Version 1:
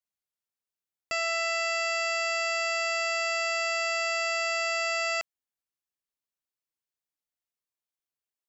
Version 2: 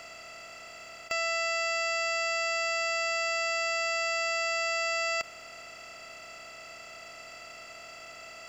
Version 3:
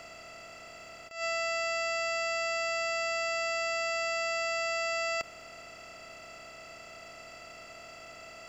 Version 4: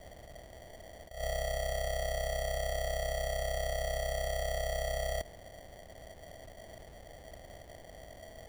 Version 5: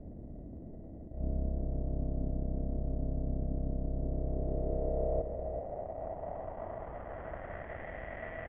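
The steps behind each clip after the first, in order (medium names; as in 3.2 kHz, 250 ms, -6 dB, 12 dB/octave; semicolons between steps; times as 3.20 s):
spectral levelling over time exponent 0.2; trim -1.5 dB
tilt shelf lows +3.5 dB, about 710 Hz; attacks held to a fixed rise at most 130 dB/s
sample-and-hold 34×; trim -2 dB
one-bit delta coder 16 kbps, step -51 dBFS; low-pass sweep 270 Hz -> 1.9 kHz, 3.91–7.90 s; delay 387 ms -9.5 dB; trim +6 dB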